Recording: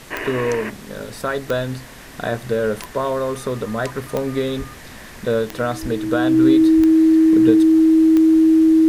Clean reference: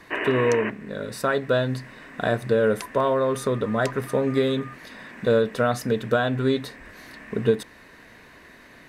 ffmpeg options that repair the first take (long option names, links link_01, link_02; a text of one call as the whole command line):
ffmpeg -i in.wav -filter_complex "[0:a]adeclick=threshold=4,bandreject=frequency=320:width=30,asplit=3[link_01][link_02][link_03];[link_01]afade=type=out:start_time=4.58:duration=0.02[link_04];[link_02]highpass=frequency=140:width=0.5412,highpass=frequency=140:width=1.3066,afade=type=in:start_time=4.58:duration=0.02,afade=type=out:start_time=4.7:duration=0.02[link_05];[link_03]afade=type=in:start_time=4.7:duration=0.02[link_06];[link_04][link_05][link_06]amix=inputs=3:normalize=0,asplit=3[link_07][link_08][link_09];[link_07]afade=type=out:start_time=5.81:duration=0.02[link_10];[link_08]highpass=frequency=140:width=0.5412,highpass=frequency=140:width=1.3066,afade=type=in:start_time=5.81:duration=0.02,afade=type=out:start_time=5.93:duration=0.02[link_11];[link_09]afade=type=in:start_time=5.93:duration=0.02[link_12];[link_10][link_11][link_12]amix=inputs=3:normalize=0,asplit=3[link_13][link_14][link_15];[link_13]afade=type=out:start_time=6.76:duration=0.02[link_16];[link_14]highpass=frequency=140:width=0.5412,highpass=frequency=140:width=1.3066,afade=type=in:start_time=6.76:duration=0.02,afade=type=out:start_time=6.88:duration=0.02[link_17];[link_15]afade=type=in:start_time=6.88:duration=0.02[link_18];[link_16][link_17][link_18]amix=inputs=3:normalize=0,afftdn=noise_reduction=11:noise_floor=-38" out.wav